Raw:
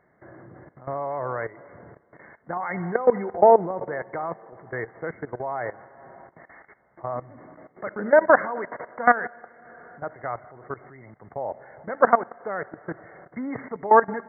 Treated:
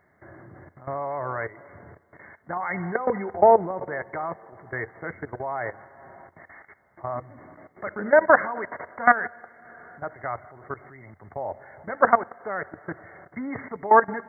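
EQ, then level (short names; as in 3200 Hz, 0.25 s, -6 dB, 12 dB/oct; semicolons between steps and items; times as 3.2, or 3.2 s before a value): bell 88 Hz +10.5 dB 0.4 oct; high shelf 2000 Hz +8.5 dB; notch 490 Hz, Q 12; -1.5 dB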